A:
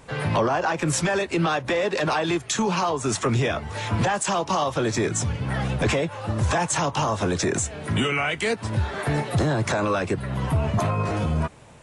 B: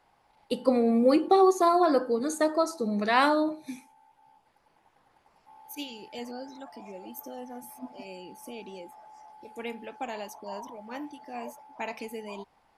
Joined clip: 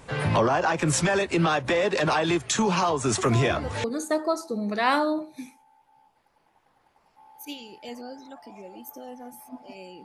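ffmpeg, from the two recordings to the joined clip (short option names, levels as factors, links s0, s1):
-filter_complex "[1:a]asplit=2[s0][s1];[0:a]apad=whole_dur=10.04,atrim=end=10.04,atrim=end=3.842[s2];[s1]atrim=start=2.138:end=8.34[s3];[s0]atrim=start=1.48:end=2.14,asetpts=PTS-STARTPTS,volume=0.266,afade=t=in:d=0.004:c=hsin,afade=t=out:st=0.656:d=0.004:c=hsin,adelay=3180[s4];[s2][s3]acrossfade=d=0.004:c1=hsin:c2=hsin[s5];[s5][s4]amix=inputs=2:normalize=0"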